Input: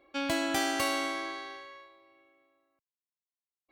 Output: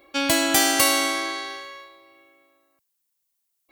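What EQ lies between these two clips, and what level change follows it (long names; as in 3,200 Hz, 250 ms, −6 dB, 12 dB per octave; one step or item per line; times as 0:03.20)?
high-shelf EQ 3,900 Hz +8 dB
high-shelf EQ 8,400 Hz +7.5 dB
+7.5 dB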